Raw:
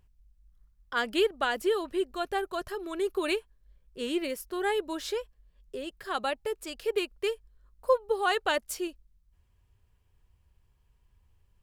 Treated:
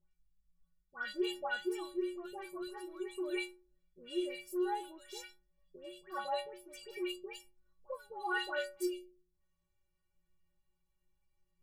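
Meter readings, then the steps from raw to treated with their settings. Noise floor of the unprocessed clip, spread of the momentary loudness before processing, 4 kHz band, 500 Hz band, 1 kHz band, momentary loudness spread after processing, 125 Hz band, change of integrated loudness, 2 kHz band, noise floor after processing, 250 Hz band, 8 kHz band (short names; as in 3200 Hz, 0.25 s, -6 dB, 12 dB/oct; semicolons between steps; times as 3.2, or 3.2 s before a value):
-68 dBFS, 11 LU, -9.5 dB, -10.5 dB, -9.5 dB, 14 LU, n/a, -9.0 dB, -7.0 dB, -81 dBFS, -5.0 dB, -10.0 dB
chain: metallic resonator 170 Hz, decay 0.54 s, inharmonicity 0.03; dispersion highs, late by 0.114 s, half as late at 1800 Hz; gain +5 dB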